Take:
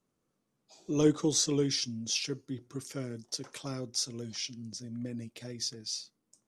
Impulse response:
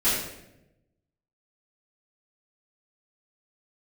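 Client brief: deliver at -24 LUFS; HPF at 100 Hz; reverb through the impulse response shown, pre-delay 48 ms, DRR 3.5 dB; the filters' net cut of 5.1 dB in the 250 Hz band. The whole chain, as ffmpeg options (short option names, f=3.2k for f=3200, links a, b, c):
-filter_complex "[0:a]highpass=100,equalizer=f=250:t=o:g=-6.5,asplit=2[a][b];[1:a]atrim=start_sample=2205,adelay=48[c];[b][c]afir=irnorm=-1:irlink=0,volume=-17.5dB[d];[a][d]amix=inputs=2:normalize=0,volume=9dB"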